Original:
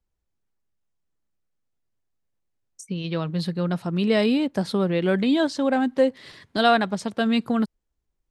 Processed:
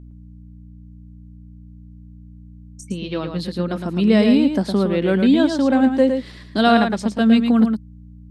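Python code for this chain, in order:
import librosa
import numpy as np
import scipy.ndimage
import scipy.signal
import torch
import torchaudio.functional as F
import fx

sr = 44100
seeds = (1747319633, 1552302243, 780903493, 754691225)

y = fx.low_shelf_res(x, sr, hz=160.0, db=-10.5, q=3.0)
y = fx.add_hum(y, sr, base_hz=60, snr_db=20)
y = y + 10.0 ** (-6.5 / 20.0) * np.pad(y, (int(111 * sr / 1000.0), 0))[:len(y)]
y = y * librosa.db_to_amplitude(1.0)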